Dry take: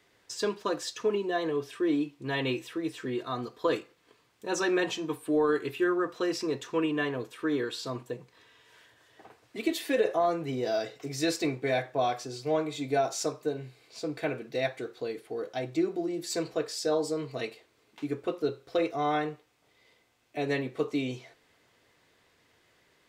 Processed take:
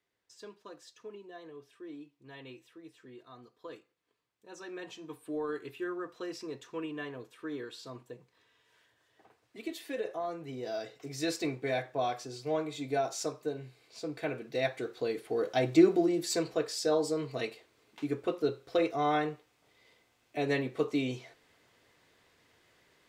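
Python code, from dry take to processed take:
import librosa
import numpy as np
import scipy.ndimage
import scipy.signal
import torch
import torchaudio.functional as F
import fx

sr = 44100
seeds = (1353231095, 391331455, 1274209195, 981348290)

y = fx.gain(x, sr, db=fx.line((4.57, -18.5), (5.22, -10.0), (10.29, -10.0), (11.34, -4.0), (14.19, -4.0), (15.87, 7.0), (16.45, -0.5)))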